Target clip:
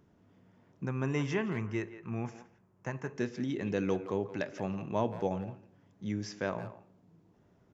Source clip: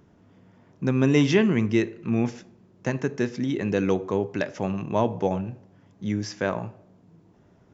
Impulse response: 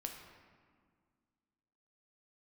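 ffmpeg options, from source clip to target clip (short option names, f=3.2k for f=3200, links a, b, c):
-filter_complex "[0:a]asettb=1/sr,asplit=3[a][b][c];[a]atrim=end=0.854[d];[b]atrim=start=0.85:end=3.16,asetpts=PTS-STARTPTS,afade=t=in:d=0.004:c=qsin,afade=t=out:st=2.306:d=0.004:c=qsin,equalizer=f=250:t=o:w=1:g=-7,equalizer=f=500:t=o:w=1:g=-4,equalizer=f=1k:t=o:w=1:g=4,equalizer=f=4k:t=o:w=1:g=-11[e];[c]atrim=start=3.156[f];[d][e]acrossfade=d=0.004:c1=hsin:c2=qsin[g];[g][f]acrossfade=d=0.004:c1=qsin:c2=hsin,asplit=2[h][i];[i]adelay=170,highpass=300,lowpass=3.4k,asoftclip=type=hard:threshold=-17.5dB,volume=-12dB[j];[h][j]amix=inputs=2:normalize=0,volume=-8dB"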